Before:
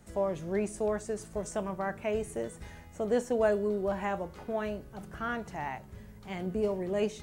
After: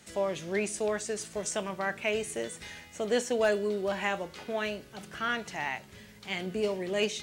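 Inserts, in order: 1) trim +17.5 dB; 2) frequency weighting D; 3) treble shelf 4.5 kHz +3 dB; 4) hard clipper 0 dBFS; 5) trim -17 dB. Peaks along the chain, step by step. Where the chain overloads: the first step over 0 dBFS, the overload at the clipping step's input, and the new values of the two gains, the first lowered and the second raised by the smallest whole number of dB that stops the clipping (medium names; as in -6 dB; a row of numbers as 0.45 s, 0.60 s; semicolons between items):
+2.5 dBFS, +4.5 dBFS, +4.5 dBFS, 0.0 dBFS, -17.0 dBFS; step 1, 4.5 dB; step 1 +12.5 dB, step 5 -12 dB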